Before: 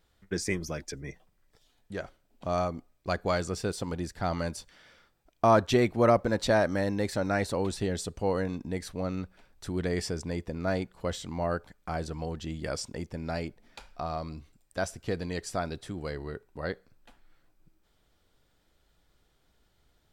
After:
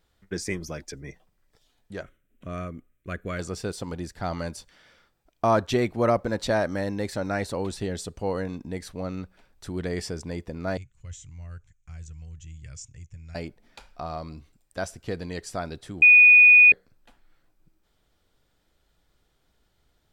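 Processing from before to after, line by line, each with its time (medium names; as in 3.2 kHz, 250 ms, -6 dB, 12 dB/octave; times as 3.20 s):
2.03–3.39 s: static phaser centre 2 kHz, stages 4
10.77–13.35 s: FFT filter 130 Hz 0 dB, 200 Hz -22 dB, 810 Hz -29 dB, 1.3 kHz -20 dB, 2.5 kHz -8 dB, 4.6 kHz -19 dB, 6.7 kHz +4 dB, 11 kHz -21 dB
16.02–16.72 s: bleep 2.47 kHz -9.5 dBFS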